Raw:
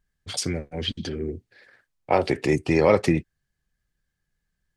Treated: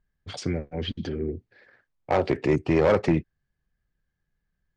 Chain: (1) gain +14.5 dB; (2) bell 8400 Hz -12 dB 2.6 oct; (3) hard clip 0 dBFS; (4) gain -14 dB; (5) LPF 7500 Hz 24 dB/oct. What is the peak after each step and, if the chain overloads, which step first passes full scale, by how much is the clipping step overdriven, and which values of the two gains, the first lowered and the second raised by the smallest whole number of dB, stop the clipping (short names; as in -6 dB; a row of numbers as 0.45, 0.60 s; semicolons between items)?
+10.0, +9.0, 0.0, -14.0, -13.5 dBFS; step 1, 9.0 dB; step 1 +5.5 dB, step 4 -5 dB